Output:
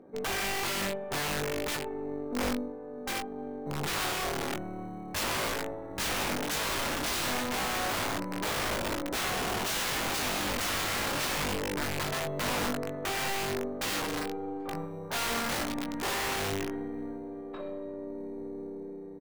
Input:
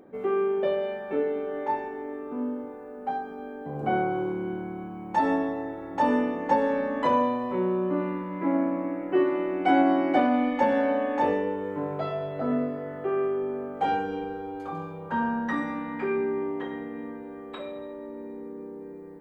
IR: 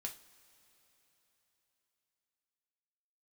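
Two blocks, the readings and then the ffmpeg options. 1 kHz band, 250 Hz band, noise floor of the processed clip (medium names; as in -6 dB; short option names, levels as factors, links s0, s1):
-7.0 dB, -9.0 dB, -41 dBFS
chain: -filter_complex "[0:a]aeval=exprs='0.335*(cos(1*acos(clip(val(0)/0.335,-1,1)))-cos(1*PI/2))+0.0376*(cos(8*acos(clip(val(0)/0.335,-1,1)))-cos(8*PI/2))':c=same,lowpass=f=1100:p=1,acrossover=split=130[s0][s1];[s0]acrusher=samples=22:mix=1:aa=0.000001[s2];[s2][s1]amix=inputs=2:normalize=0,aeval=exprs='(mod(18.8*val(0)+1,2)-1)/18.8':c=same,asplit=2[s3][s4];[s4]adelay=20,volume=0.531[s5];[s3][s5]amix=inputs=2:normalize=0,volume=0.794"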